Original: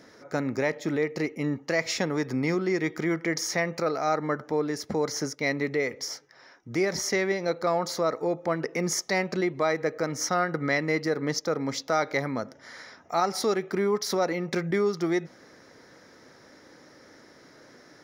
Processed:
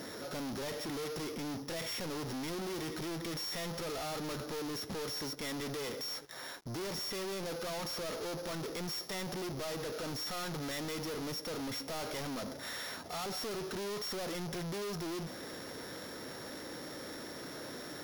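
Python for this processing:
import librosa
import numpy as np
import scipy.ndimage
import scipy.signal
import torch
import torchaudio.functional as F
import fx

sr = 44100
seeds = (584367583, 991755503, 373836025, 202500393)

y = np.r_[np.sort(x[:len(x) // 8 * 8].reshape(-1, 8), axis=1).ravel(), x[len(x) // 8 * 8:]]
y = 10.0 ** (-29.0 / 20.0) * np.tanh(y / 10.0 ** (-29.0 / 20.0))
y = fx.leveller(y, sr, passes=5)
y = y * 10.0 ** (-8.5 / 20.0)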